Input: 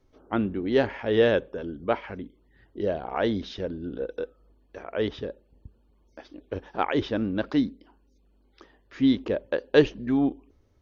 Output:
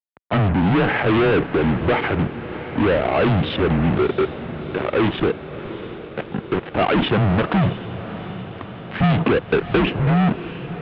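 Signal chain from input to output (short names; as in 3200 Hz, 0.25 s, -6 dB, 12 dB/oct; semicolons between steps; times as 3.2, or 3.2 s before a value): fuzz box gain 38 dB, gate -45 dBFS; mistuned SSB -100 Hz 160–3300 Hz; on a send: diffused feedback echo 0.681 s, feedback 62%, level -13 dB; 9.03–9.87 on the sum: three-band squash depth 100%; gain -1.5 dB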